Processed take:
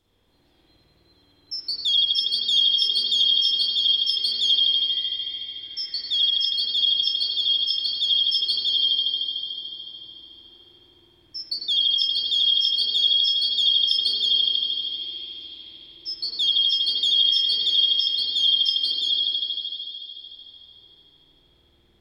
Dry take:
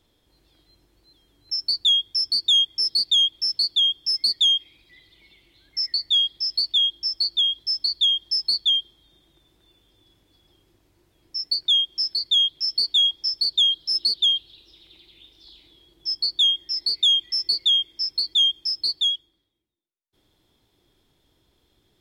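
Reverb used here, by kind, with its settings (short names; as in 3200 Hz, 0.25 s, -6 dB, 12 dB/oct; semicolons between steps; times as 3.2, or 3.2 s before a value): spring tank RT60 3.4 s, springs 52 ms, chirp 45 ms, DRR -8 dB; gain -5 dB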